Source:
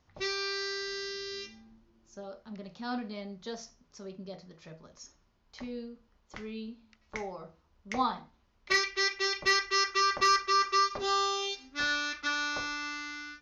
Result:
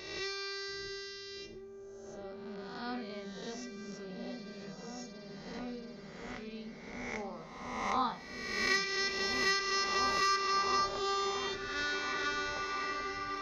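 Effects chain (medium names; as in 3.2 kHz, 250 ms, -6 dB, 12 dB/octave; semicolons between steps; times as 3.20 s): reverse spectral sustain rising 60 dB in 1.23 s; delay with an opening low-pass 682 ms, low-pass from 200 Hz, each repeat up 1 oct, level 0 dB; trim -6 dB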